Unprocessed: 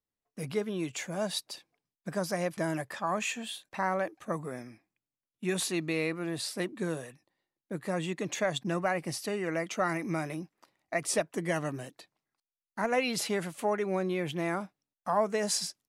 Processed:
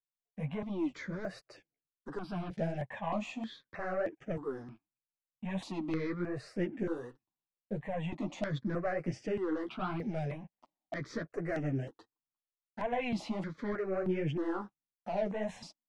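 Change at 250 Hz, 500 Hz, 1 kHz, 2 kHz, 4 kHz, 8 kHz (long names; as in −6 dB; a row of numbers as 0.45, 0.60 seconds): −1.5, −4.5, −6.5, −8.0, −13.5, −22.5 decibels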